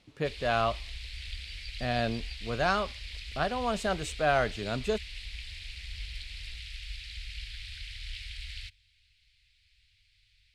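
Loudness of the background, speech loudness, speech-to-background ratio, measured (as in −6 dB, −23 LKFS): −41.5 LKFS, −31.0 LKFS, 10.5 dB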